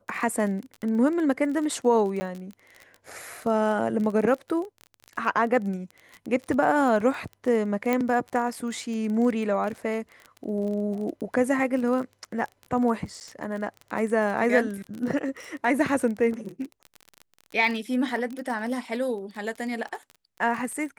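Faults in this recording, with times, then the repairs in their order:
surface crackle 26 per second −31 dBFS
0:02.20–0:02.21: drop-out 10 ms
0:07.93: click −12 dBFS
0:13.20–0:13.21: drop-out 9 ms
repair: click removal
repair the gap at 0:02.20, 10 ms
repair the gap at 0:13.20, 9 ms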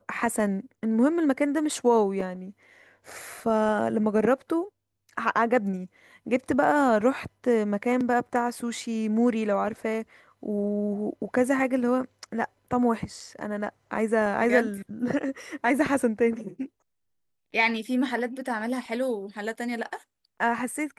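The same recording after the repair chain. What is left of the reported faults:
0:07.93: click

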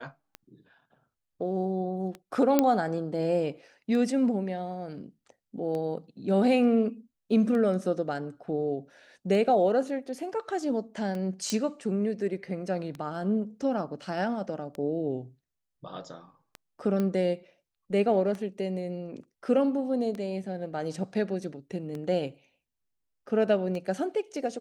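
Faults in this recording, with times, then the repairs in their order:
scratch tick 33 1/3 rpm −24 dBFS
0:02.59: click −8 dBFS
0:11.50: click −15 dBFS
0:17.00: click −18 dBFS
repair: click removal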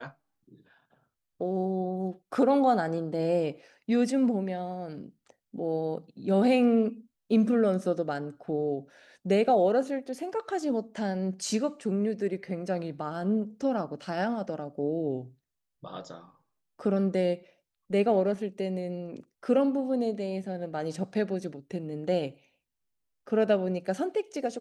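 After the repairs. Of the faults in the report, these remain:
0:02.59: click

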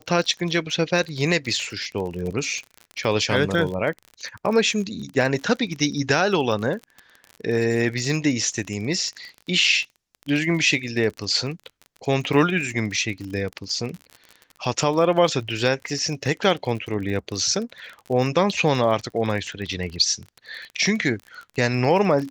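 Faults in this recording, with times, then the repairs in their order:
surface crackle 35 per second −29 dBFS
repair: click removal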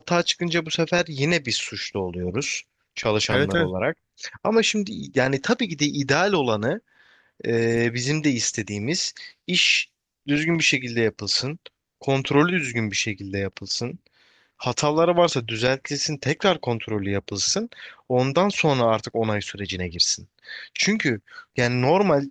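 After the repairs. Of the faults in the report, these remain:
none of them is left

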